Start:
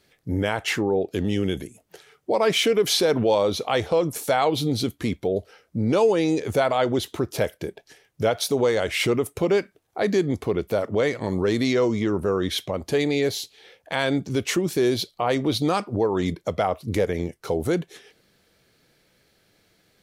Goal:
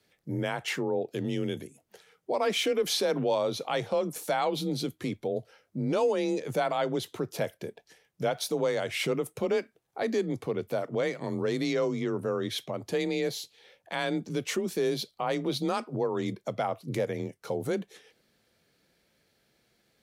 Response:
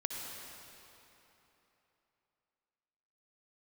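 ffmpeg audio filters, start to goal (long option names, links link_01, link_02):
-af "afreqshift=28,volume=-7dB"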